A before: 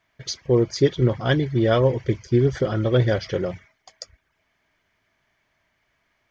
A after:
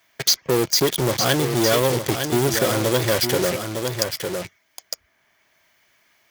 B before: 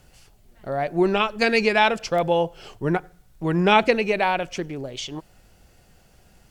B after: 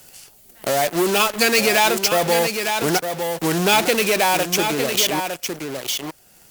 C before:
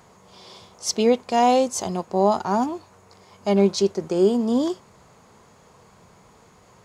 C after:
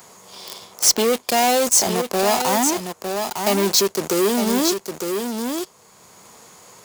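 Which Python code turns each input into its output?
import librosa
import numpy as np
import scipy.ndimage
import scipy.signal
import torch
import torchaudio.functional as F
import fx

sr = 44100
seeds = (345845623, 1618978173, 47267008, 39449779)

p1 = fx.fuzz(x, sr, gain_db=39.0, gate_db=-35.0)
p2 = x + (p1 * 10.0 ** (-8.0 / 20.0))
p3 = fx.low_shelf(p2, sr, hz=460.0, db=6.0)
p4 = fx.leveller(p3, sr, passes=1)
p5 = fx.riaa(p4, sr, side='recording')
p6 = p5 + fx.echo_single(p5, sr, ms=907, db=-8.5, dry=0)
p7 = fx.band_squash(p6, sr, depth_pct=40)
y = p7 * 10.0 ** (-6.0 / 20.0)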